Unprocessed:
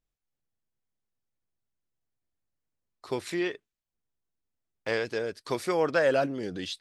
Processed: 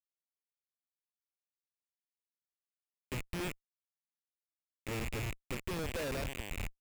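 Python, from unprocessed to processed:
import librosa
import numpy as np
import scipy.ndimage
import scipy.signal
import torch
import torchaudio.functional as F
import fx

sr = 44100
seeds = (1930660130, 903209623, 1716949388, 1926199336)

y = fx.rattle_buzz(x, sr, strikes_db=-49.0, level_db=-17.0)
y = fx.fixed_phaser(y, sr, hz=2500.0, stages=4)
y = fx.schmitt(y, sr, flips_db=-26.0)
y = y * librosa.db_to_amplitude(-2.5)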